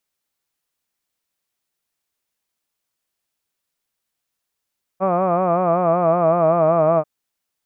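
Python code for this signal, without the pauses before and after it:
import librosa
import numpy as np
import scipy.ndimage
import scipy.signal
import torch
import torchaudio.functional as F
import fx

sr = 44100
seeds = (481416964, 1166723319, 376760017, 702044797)

y = fx.vowel(sr, seeds[0], length_s=2.04, word='hud', hz=184.0, glide_st=-2.5, vibrato_hz=5.3, vibrato_st=0.9)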